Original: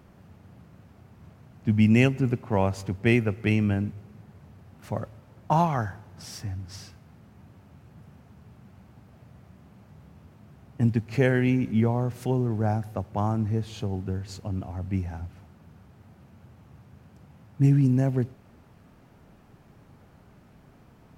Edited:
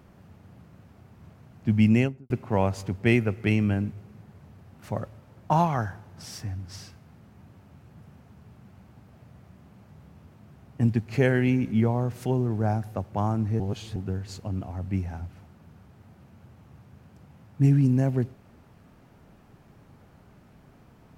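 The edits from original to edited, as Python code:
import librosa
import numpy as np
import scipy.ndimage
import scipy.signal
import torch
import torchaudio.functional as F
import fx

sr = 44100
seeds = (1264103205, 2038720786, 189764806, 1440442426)

y = fx.studio_fade_out(x, sr, start_s=1.85, length_s=0.45)
y = fx.edit(y, sr, fx.reverse_span(start_s=13.6, length_s=0.36), tone=tone)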